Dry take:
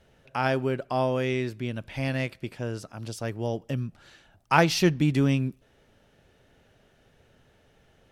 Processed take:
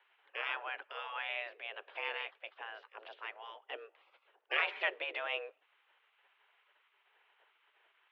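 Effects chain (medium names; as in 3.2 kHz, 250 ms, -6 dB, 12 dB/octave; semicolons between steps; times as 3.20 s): spectral gate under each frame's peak -15 dB weak; mistuned SSB +96 Hz 310–3000 Hz; short-mantissa float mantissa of 8-bit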